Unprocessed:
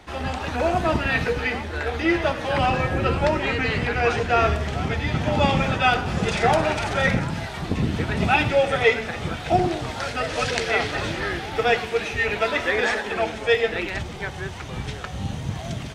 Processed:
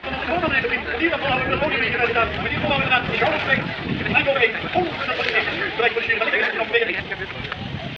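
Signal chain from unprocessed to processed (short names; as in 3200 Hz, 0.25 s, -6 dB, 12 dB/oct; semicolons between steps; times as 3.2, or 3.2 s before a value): weighting filter D; in parallel at -2 dB: compressor, threshold -24 dBFS, peak gain reduction 16 dB; on the sum: tempo 2×; air absorption 380 m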